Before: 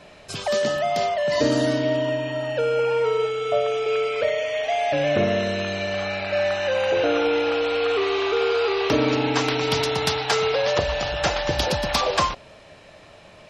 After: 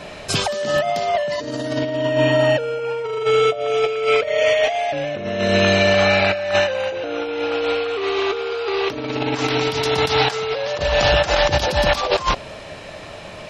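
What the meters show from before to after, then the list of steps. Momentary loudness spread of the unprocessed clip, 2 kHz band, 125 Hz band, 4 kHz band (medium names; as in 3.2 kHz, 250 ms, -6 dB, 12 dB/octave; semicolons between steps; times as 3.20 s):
5 LU, +5.0 dB, +4.5 dB, +4.0 dB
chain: compressor with a negative ratio -26 dBFS, ratio -0.5; trim +7.5 dB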